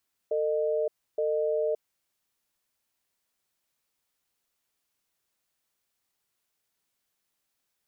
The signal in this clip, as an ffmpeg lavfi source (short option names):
-f lavfi -i "aevalsrc='0.0447*(sin(2*PI*450*t)+sin(2*PI*612*t))*clip(min(mod(t,0.87),0.57-mod(t,0.87))/0.005,0,1)':d=1.58:s=44100"